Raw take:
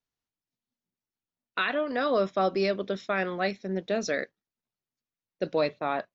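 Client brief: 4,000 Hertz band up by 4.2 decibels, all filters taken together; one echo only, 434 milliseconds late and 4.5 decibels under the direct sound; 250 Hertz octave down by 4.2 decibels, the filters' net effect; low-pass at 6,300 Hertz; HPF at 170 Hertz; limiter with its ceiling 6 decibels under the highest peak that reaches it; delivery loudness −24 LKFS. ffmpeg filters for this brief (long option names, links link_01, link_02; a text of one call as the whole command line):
ffmpeg -i in.wav -af "highpass=170,lowpass=6300,equalizer=frequency=250:width_type=o:gain=-4.5,equalizer=frequency=4000:width_type=o:gain=5.5,alimiter=limit=-21dB:level=0:latency=1,aecho=1:1:434:0.596,volume=7.5dB" out.wav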